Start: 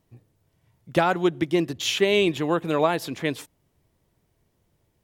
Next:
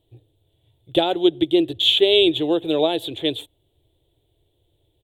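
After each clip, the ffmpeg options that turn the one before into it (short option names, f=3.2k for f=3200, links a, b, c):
-af "firequalizer=gain_entry='entry(110,0);entry(210,-21);entry(310,2);entry(530,-1);entry(790,-4);entry(1100,-17);entry(2100,-12);entry(3500,12);entry(5100,-25);entry(7900,-7)':delay=0.05:min_phase=1,volume=4dB"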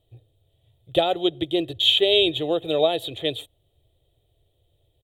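-af "aecho=1:1:1.6:0.48,volume=-2dB"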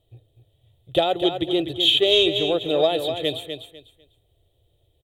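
-af "acontrast=22,aecho=1:1:249|498|747:0.398|0.0916|0.0211,volume=-4dB"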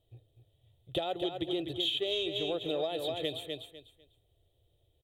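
-af "acompressor=threshold=-23dB:ratio=6,volume=-6.5dB"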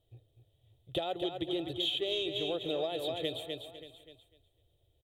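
-af "aecho=1:1:580:0.168,volume=-1dB"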